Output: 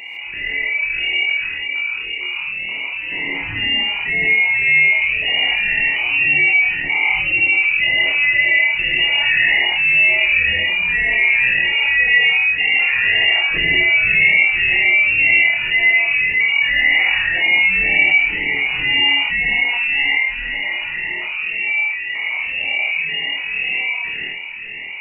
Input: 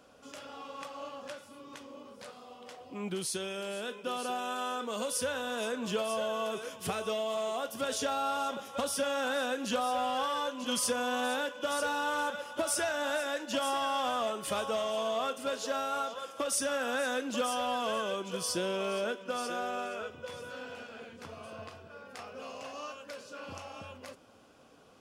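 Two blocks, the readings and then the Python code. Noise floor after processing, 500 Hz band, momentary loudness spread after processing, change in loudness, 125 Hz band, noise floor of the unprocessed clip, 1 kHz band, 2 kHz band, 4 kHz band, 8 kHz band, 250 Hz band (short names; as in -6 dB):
-27 dBFS, -3.0 dB, 10 LU, +19.5 dB, +13.0 dB, -53 dBFS, -0.5 dB, +27.5 dB, +19.5 dB, under -35 dB, +2.0 dB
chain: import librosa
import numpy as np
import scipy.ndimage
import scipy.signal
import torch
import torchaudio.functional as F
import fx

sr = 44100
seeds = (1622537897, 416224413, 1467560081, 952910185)

y = fx.spec_ripple(x, sr, per_octave=0.89, drift_hz=-1.9, depth_db=24)
y = scipy.signal.sosfilt(scipy.signal.butter(8, 590.0, 'highpass', fs=sr, output='sos'), y)
y = fx.high_shelf_res(y, sr, hz=1600.0, db=-6.5, q=3.0)
y = fx.doubler(y, sr, ms=25.0, db=-3.0)
y = fx.room_early_taps(y, sr, ms=(27, 76), db=(-6.0, -4.0))
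y = fx.dynamic_eq(y, sr, hz=2100.0, q=0.93, threshold_db=-35.0, ratio=4.0, max_db=5)
y = fx.freq_invert(y, sr, carrier_hz=3400)
y = fx.rev_gated(y, sr, seeds[0], gate_ms=180, shape='rising', drr_db=-5.5)
y = fx.env_flatten(y, sr, amount_pct=50)
y = y * 10.0 ** (-4.0 / 20.0)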